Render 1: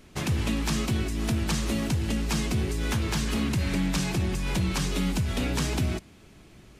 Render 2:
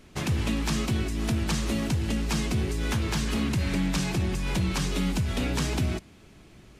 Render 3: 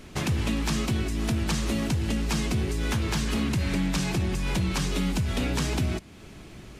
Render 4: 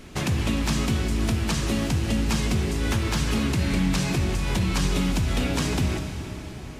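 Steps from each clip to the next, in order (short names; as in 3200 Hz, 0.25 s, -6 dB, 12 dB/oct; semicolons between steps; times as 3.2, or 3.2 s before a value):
high shelf 10000 Hz -3.5 dB
compressor 1.5:1, threshold -42 dBFS, peak gain reduction 7.5 dB; gain +7 dB
plate-style reverb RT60 4.4 s, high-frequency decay 0.8×, DRR 5 dB; gain +1.5 dB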